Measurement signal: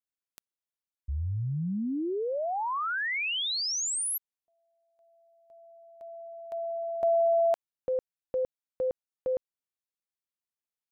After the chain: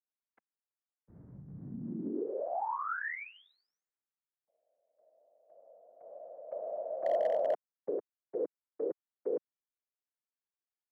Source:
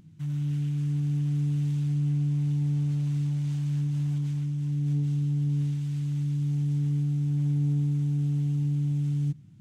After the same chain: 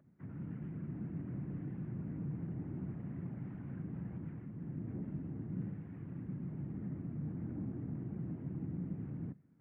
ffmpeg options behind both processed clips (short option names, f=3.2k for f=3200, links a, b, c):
-af "afftfilt=real='hypot(re,im)*cos(2*PI*random(0))':imag='hypot(re,im)*sin(2*PI*random(1))':win_size=512:overlap=0.75,highpass=f=250:t=q:w=0.5412,highpass=f=250:t=q:w=1.307,lowpass=f=2k:t=q:w=0.5176,lowpass=f=2k:t=q:w=0.7071,lowpass=f=2k:t=q:w=1.932,afreqshift=-64,volume=24.5dB,asoftclip=hard,volume=-24.5dB,volume=1dB"